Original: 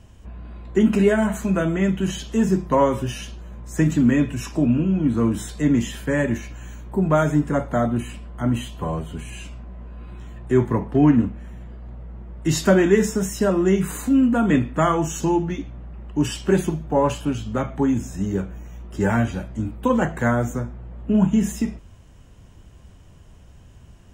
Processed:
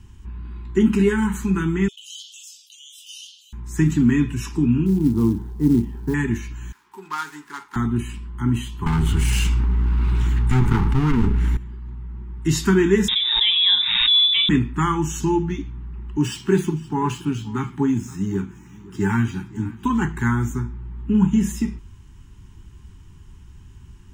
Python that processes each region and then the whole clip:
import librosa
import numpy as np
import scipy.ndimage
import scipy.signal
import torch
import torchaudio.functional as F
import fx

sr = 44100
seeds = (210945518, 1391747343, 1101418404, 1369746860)

y = fx.chain(x, sr, fx.steep_highpass(hz=2900.0, slope=96),
    fx.high_shelf(hz=5300.0, db=-9.0),
    fx.env_flatten(amount_pct=50), at=(1.88, 3.53))
y = fx.chain(y, sr, fx.lowpass_res(hz=650.0, q=4.1),
    fx.quant_float(bits=4), at=(4.86, 6.14))
y = fx.chain(y, sr, fx.median_filter(points=15),
    fx.highpass(hz=930.0, slope=12),
    fx.high_shelf(hz=5500.0, db=2.5), at=(6.72, 7.76))
y = fx.chain(y, sr, fx.lower_of_two(delay_ms=1.4),
    fx.env_flatten(amount_pct=70), at=(8.86, 11.57))
y = fx.chain(y, sr, fx.freq_invert(carrier_hz=3700),
    fx.pre_swell(db_per_s=28.0), at=(13.08, 14.49))
y = fx.chain(y, sr, fx.median_filter(points=3),
    fx.highpass(hz=99.0, slope=24),
    fx.echo_single(ms=520, db=-20.0), at=(16.17, 19.85))
y = scipy.signal.sosfilt(scipy.signal.cheby1(3, 1.0, [400.0, 860.0], 'bandstop', fs=sr, output='sos'), y)
y = fx.low_shelf(y, sr, hz=120.0, db=5.0)